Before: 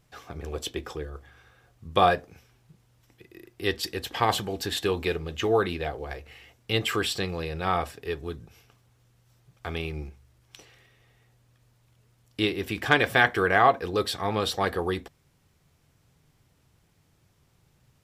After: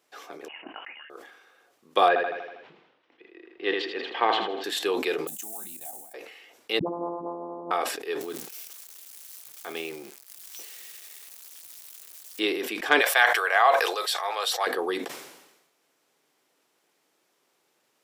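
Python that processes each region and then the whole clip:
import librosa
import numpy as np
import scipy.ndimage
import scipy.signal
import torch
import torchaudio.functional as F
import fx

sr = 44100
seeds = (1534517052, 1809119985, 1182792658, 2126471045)

y = fx.chain(x, sr, fx.highpass(hz=1000.0, slope=12),
    fx.freq_invert(carrier_hz=3300), at=(0.48, 1.1))
y = fx.chain(y, sr, fx.lowpass(hz=3400.0, slope=24),
    fx.echo_feedback(ms=80, feedback_pct=52, wet_db=-9.5), at=(2.08, 4.64))
y = fx.chain(y, sr, fx.block_float(bits=5),
    fx.curve_eq(hz=(220.0, 450.0, 760.0, 1200.0, 3100.0, 4900.0, 8000.0), db=(0, -27, -6, -22, -15, -8, 15)),
    fx.level_steps(step_db=12), at=(5.27, 6.14))
y = fx.chain(y, sr, fx.sample_sort(block=256),
    fx.steep_lowpass(hz=1100.0, slope=72),
    fx.dispersion(late='highs', ms=78.0, hz=370.0), at=(6.79, 7.71))
y = fx.chain(y, sr, fx.crossing_spikes(level_db=-33.5),
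    fx.low_shelf(hz=150.0, db=9.0),
    fx.transient(attack_db=-4, sustain_db=-11), at=(8.21, 12.4))
y = fx.chain(y, sr, fx.highpass(hz=590.0, slope=24),
    fx.high_shelf(hz=4700.0, db=5.0), at=(13.01, 14.67))
y = scipy.signal.sosfilt(scipy.signal.butter(4, 310.0, 'highpass', fs=sr, output='sos'), y)
y = fx.sustainer(y, sr, db_per_s=56.0)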